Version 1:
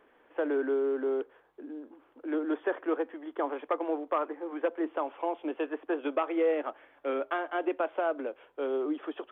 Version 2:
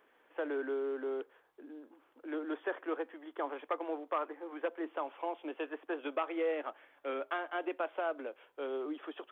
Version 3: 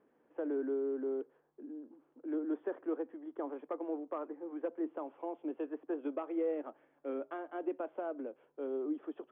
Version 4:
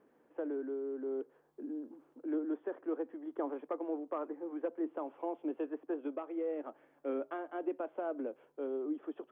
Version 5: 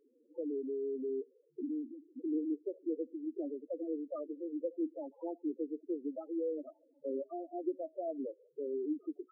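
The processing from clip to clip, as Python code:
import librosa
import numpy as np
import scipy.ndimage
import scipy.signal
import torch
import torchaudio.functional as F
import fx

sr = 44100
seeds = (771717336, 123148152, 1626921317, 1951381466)

y1 = fx.tilt_eq(x, sr, slope=2.0)
y1 = y1 * 10.0 ** (-4.5 / 20.0)
y2 = fx.bandpass_q(y1, sr, hz=160.0, q=1.4)
y2 = y2 * 10.0 ** (10.5 / 20.0)
y3 = fx.rider(y2, sr, range_db=5, speed_s=0.5)
y4 = fx.recorder_agc(y3, sr, target_db=-32.0, rise_db_per_s=16.0, max_gain_db=30)
y4 = fx.spec_topn(y4, sr, count=4)
y4 = y4 * 10.0 ** (1.0 / 20.0)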